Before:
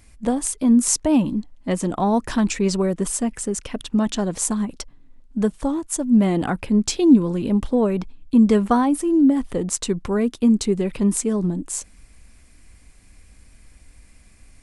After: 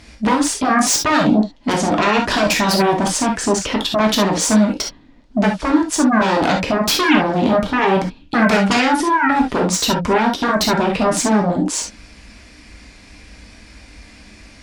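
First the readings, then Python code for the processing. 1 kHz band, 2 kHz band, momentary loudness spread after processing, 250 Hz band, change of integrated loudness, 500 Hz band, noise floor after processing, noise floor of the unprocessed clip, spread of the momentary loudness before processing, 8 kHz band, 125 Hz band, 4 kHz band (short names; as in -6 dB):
+12.0 dB, +17.0 dB, 5 LU, +1.0 dB, +4.0 dB, +5.5 dB, -45 dBFS, -51 dBFS, 11 LU, +4.5 dB, +2.5 dB, +13.5 dB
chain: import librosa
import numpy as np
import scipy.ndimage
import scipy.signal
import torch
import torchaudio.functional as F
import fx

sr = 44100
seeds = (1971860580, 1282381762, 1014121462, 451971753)

p1 = fx.high_shelf_res(x, sr, hz=6800.0, db=-11.5, q=1.5)
p2 = fx.fold_sine(p1, sr, drive_db=18, ceiling_db=-4.0)
p3 = p1 + F.gain(torch.from_numpy(p2), -4.0).numpy()
p4 = fx.highpass(p3, sr, hz=110.0, slope=6)
p5 = fx.rev_gated(p4, sr, seeds[0], gate_ms=90, shape='flat', drr_db=0.5)
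y = F.gain(torch.from_numpy(p5), -7.0).numpy()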